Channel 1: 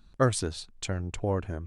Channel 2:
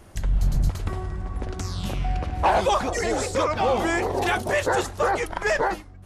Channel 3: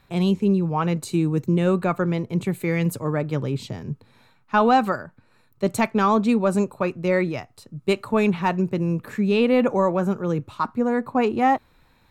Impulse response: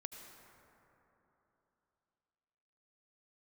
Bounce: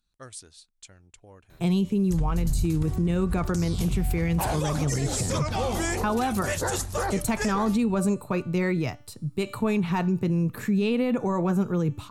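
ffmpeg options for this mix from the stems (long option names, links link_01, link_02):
-filter_complex "[0:a]tiltshelf=frequency=1400:gain=-4.5,volume=-18.5dB[link_01];[1:a]bass=frequency=250:gain=10,treble=frequency=4000:gain=7,adelay=1950,volume=-6.5dB[link_02];[2:a]lowshelf=frequency=180:gain=11,bandreject=frequency=560:width=12,bandreject=frequency=293:width_type=h:width=4,bandreject=frequency=586:width_type=h:width=4,bandreject=frequency=879:width_type=h:width=4,bandreject=frequency=1172:width_type=h:width=4,bandreject=frequency=1465:width_type=h:width=4,bandreject=frequency=1758:width_type=h:width=4,bandreject=frequency=2051:width_type=h:width=4,bandreject=frequency=2344:width_type=h:width=4,bandreject=frequency=2637:width_type=h:width=4,bandreject=frequency=2930:width_type=h:width=4,bandreject=frequency=3223:width_type=h:width=4,bandreject=frequency=3516:width_type=h:width=4,bandreject=frequency=3809:width_type=h:width=4,bandreject=frequency=4102:width_type=h:width=4,bandreject=frequency=4395:width_type=h:width=4,bandreject=frequency=4688:width_type=h:width=4,bandreject=frequency=4981:width_type=h:width=4,bandreject=frequency=5274:width_type=h:width=4,bandreject=frequency=5567:width_type=h:width=4,bandreject=frequency=5860:width_type=h:width=4,bandreject=frequency=6153:width_type=h:width=4,bandreject=frequency=6446:width_type=h:width=4,bandreject=frequency=6739:width_type=h:width=4,bandreject=frequency=7032:width_type=h:width=4,bandreject=frequency=7325:width_type=h:width=4,bandreject=frequency=7618:width_type=h:width=4,bandreject=frequency=7911:width_type=h:width=4,bandreject=frequency=8204:width_type=h:width=4,bandreject=frequency=8497:width_type=h:width=4,bandreject=frequency=8790:width_type=h:width=4,bandreject=frequency=9083:width_type=h:width=4,bandreject=frequency=9376:width_type=h:width=4,bandreject=frequency=9669:width_type=h:width=4,bandreject=frequency=9962:width_type=h:width=4,bandreject=frequency=10255:width_type=h:width=4,bandreject=frequency=10548:width_type=h:width=4,bandreject=frequency=10841:width_type=h:width=4,bandreject=frequency=11134:width_type=h:width=4,adelay=1500,volume=-1dB[link_03];[link_01][link_02][link_03]amix=inputs=3:normalize=0,aemphasis=mode=production:type=cd,alimiter=limit=-17dB:level=0:latency=1:release=102"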